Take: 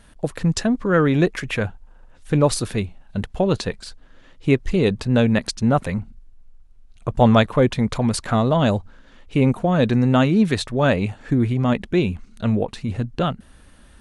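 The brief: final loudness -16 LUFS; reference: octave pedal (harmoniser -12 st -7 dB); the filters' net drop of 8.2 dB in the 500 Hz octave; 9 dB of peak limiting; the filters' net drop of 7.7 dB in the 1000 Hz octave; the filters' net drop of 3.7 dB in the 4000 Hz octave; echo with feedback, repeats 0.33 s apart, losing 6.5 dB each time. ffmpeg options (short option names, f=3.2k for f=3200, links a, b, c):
-filter_complex "[0:a]equalizer=f=500:t=o:g=-8.5,equalizer=f=1k:t=o:g=-7.5,equalizer=f=4k:t=o:g=-4,alimiter=limit=-15.5dB:level=0:latency=1,aecho=1:1:330|660|990|1320|1650|1980:0.473|0.222|0.105|0.0491|0.0231|0.0109,asplit=2[a][b];[b]asetrate=22050,aresample=44100,atempo=2,volume=-7dB[c];[a][c]amix=inputs=2:normalize=0,volume=9.5dB"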